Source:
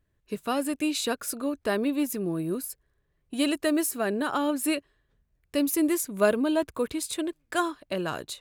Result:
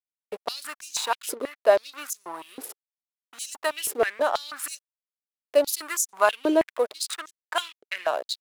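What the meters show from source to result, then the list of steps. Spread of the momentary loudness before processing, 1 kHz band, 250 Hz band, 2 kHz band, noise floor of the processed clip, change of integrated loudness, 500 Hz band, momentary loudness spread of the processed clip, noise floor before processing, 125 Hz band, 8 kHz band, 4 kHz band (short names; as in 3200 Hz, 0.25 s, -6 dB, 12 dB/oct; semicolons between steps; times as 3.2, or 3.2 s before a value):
8 LU, +4.0 dB, -9.0 dB, +2.5 dB, under -85 dBFS, +1.0 dB, +3.5 dB, 15 LU, -74 dBFS, under -15 dB, +3.0 dB, +2.5 dB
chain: backlash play -31.5 dBFS; stepped high-pass 6.2 Hz 420–6300 Hz; gain +2 dB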